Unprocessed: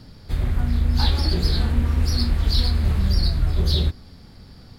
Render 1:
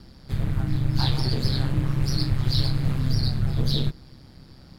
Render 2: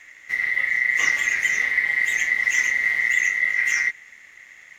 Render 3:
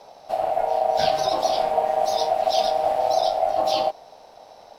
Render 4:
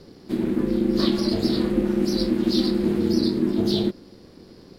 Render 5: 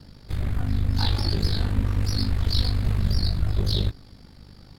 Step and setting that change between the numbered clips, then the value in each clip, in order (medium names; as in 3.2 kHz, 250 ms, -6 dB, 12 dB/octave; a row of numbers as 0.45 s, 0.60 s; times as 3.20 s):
ring modulator, frequency: 66 Hz, 2 kHz, 700 Hz, 280 Hz, 25 Hz